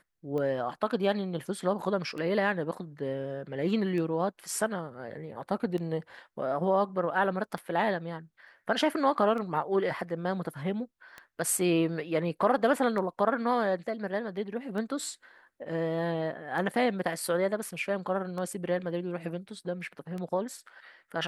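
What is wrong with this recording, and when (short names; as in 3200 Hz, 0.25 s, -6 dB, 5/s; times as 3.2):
tick 33 1/3 rpm -25 dBFS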